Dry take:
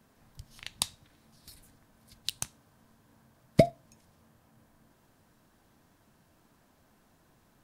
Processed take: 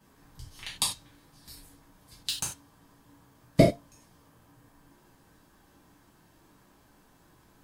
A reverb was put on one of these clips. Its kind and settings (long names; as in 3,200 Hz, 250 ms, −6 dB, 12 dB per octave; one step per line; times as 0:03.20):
reverb whose tail is shaped and stops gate 120 ms falling, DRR −6.5 dB
level −3 dB